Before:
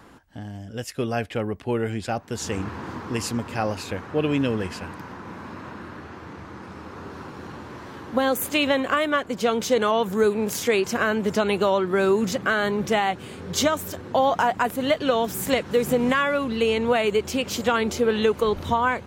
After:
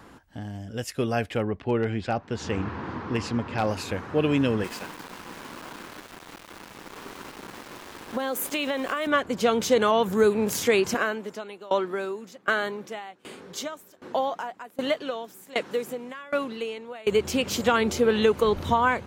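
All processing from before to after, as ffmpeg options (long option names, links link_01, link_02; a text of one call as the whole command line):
ffmpeg -i in.wav -filter_complex "[0:a]asettb=1/sr,asplit=3[link_01][link_02][link_03];[link_01]atrim=end=1.424[link_04];[link_02]atrim=start=1.42:end=3.67,asetpts=PTS-STARTPTS,afade=type=in:duration=0.004:curve=qsin,afade=type=out:start_time=2.246:duration=0.004:curve=qsin,lowpass=3900,aeval=exprs='0.178*(abs(mod(val(0)/0.178+3,4)-2)-1)':channel_layout=same[link_05];[link_03]atrim=start=3.666[link_06];[link_04][link_05]acrossfade=duration=0.004:curve1=hsin:curve2=qsin[link_07];[link_07][link_06]acrossfade=duration=0.004:curve1=qsin:curve2=hsin,asettb=1/sr,asplit=3[link_08][link_09][link_10];[link_08]atrim=end=4.644[link_11];[link_09]atrim=start=4.64:end=9.07,asetpts=PTS-STARTPTS,afade=type=in:duration=0.004:curve=qsin,afade=type=out:start_time=4.426:duration=0.004:curve=qsin,highpass=230,aeval=exprs='val(0)*gte(abs(val(0)),0.0141)':channel_layout=same,acompressor=threshold=-25dB:ratio=3:attack=3.2:release=140:knee=1:detection=peak[link_12];[link_10]atrim=start=9.066[link_13];[link_11][link_12]acrossfade=duration=0.004:curve1=hsin:curve2=qsin[link_14];[link_14][link_13]acrossfade=duration=0.004:curve1=qsin:curve2=hsin,asettb=1/sr,asplit=3[link_15][link_16][link_17];[link_15]atrim=end=10.944[link_18];[link_16]atrim=start=10.94:end=17.07,asetpts=PTS-STARTPTS,afade=type=in:duration=0.004:curve=qsin,afade=type=out:start_time=6.126:duration=0.004:curve=qsin,highpass=250,aeval=exprs='val(0)*pow(10,-23*if(lt(mod(1.3*n/s,1),2*abs(1.3)/1000),1-mod(1.3*n/s,1)/(2*abs(1.3)/1000),(mod(1.3*n/s,1)-2*abs(1.3)/1000)/(1-2*abs(1.3)/1000))/20)':channel_layout=same[link_19];[link_17]atrim=start=17.066[link_20];[link_18][link_19]acrossfade=duration=0.004:curve1=hsin:curve2=qsin[link_21];[link_21][link_20]acrossfade=duration=0.004:curve1=qsin:curve2=hsin" out.wav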